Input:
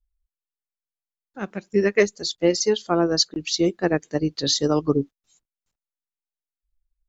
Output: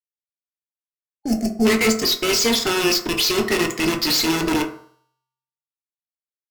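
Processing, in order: rattling part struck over -32 dBFS, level -21 dBFS; low-pass opened by the level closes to 1200 Hz, open at -18.5 dBFS; ten-band EQ 125 Hz -8 dB, 250 Hz +10 dB, 500 Hz -9 dB, 1000 Hz -8 dB, 2000 Hz +10 dB, 4000 Hz +8 dB; in parallel at -1.5 dB: vocal rider within 3 dB 0.5 s; on the sum: fuzz box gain 33 dB, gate -38 dBFS; resonator 120 Hz, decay 0.96 s, harmonics odd, mix 50%; on a send at -1.5 dB: reverb RT60 0.60 s, pre-delay 3 ms; on the sum: speed mistake 44.1 kHz file played as 48 kHz; spectral gain 1.09–1.66, 820–4300 Hz -20 dB

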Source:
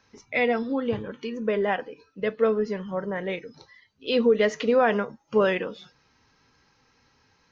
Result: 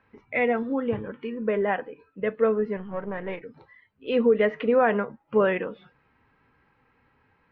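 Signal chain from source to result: 2.77–3.42 half-wave gain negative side -7 dB; LPF 2500 Hz 24 dB/oct

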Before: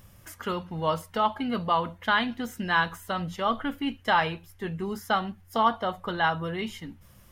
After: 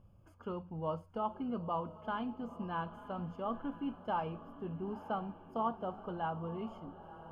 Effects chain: running mean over 23 samples; diffused feedback echo 0.945 s, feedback 43%, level -13.5 dB; gain -8 dB

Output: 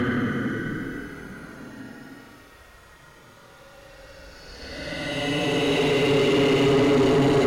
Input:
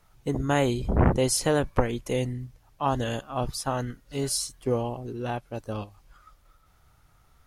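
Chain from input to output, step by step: Paulstretch 24×, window 0.05 s, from 3.91; overdrive pedal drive 28 dB, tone 1600 Hz, clips at -15 dBFS; gain +3.5 dB

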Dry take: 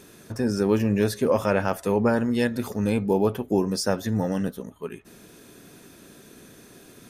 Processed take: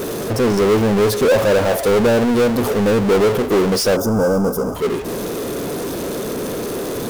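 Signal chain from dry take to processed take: graphic EQ 500/2000/8000 Hz +11/-10/-5 dB; power-law curve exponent 0.35; spectral gain 3.96–4.75, 1600–4700 Hz -20 dB; gain -6 dB

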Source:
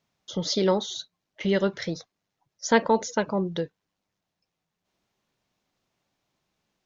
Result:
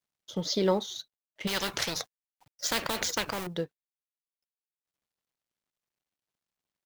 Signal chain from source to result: G.711 law mismatch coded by A; 1.47–3.47 spectral compressor 4:1; gain -2.5 dB

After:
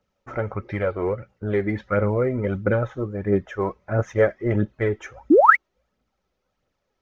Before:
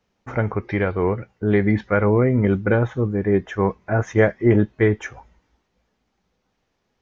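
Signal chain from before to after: painted sound rise, 5.3–5.56, 260–2300 Hz -10 dBFS; phaser 1.5 Hz, delay 3.2 ms, feedback 45%; small resonant body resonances 560/1300 Hz, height 10 dB; gain -6.5 dB

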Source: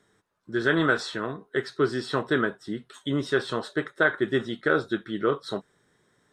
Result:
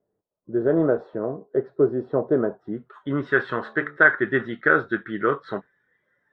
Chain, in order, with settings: 3.54–3.97 de-hum 73.23 Hz, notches 19; spectral noise reduction 13 dB; low-pass sweep 600 Hz -> 1800 Hz, 2.33–3.37; gain +1 dB

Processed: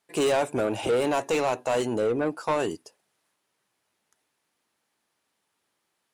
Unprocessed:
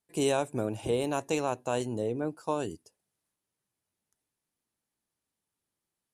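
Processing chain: overdrive pedal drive 22 dB, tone 2900 Hz, clips at -15 dBFS

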